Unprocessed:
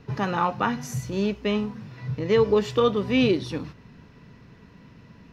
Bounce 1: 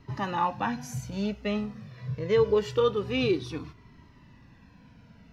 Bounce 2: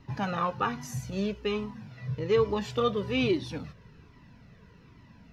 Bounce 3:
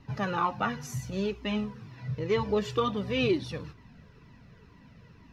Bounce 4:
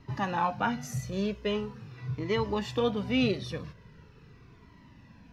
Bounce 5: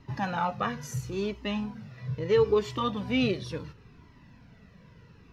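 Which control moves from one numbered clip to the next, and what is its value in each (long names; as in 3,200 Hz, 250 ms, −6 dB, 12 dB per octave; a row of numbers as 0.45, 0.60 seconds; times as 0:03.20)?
flanger whose copies keep moving one way, speed: 0.25, 1.2, 2.1, 0.42, 0.73 Hertz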